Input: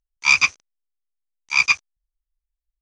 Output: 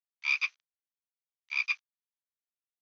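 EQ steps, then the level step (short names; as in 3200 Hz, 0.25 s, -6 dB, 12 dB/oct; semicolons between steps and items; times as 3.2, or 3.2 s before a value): Chebyshev high-pass 2000 Hz, order 2; LPF 4000 Hz 24 dB/oct; dynamic EQ 2100 Hz, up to -5 dB, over -28 dBFS, Q 0.77; -8.0 dB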